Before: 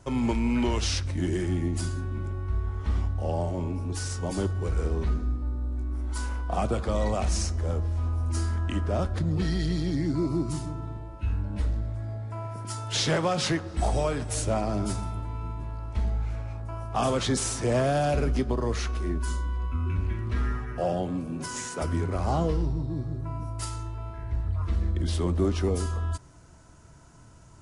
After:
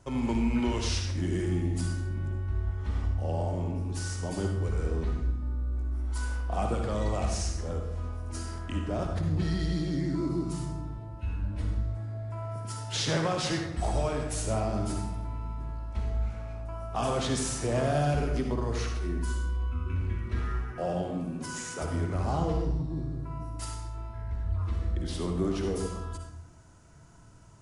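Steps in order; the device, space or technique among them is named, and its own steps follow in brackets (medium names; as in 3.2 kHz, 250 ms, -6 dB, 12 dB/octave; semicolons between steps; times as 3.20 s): bathroom (reverberation RT60 0.75 s, pre-delay 52 ms, DRR 3 dB); trim -4.5 dB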